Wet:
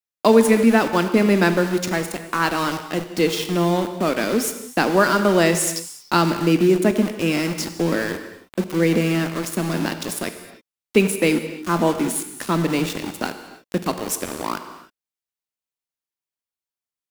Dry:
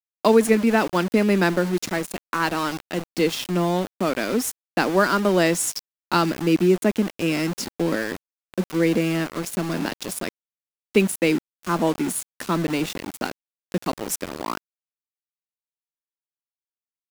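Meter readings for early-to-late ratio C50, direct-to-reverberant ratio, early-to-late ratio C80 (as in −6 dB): 9.5 dB, 8.5 dB, 10.5 dB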